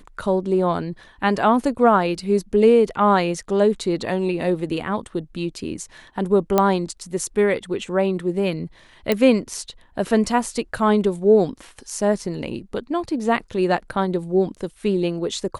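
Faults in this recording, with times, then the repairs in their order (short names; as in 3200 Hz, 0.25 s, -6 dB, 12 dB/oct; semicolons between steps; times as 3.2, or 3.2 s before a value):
6.58 pop -4 dBFS
9.12 pop -6 dBFS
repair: de-click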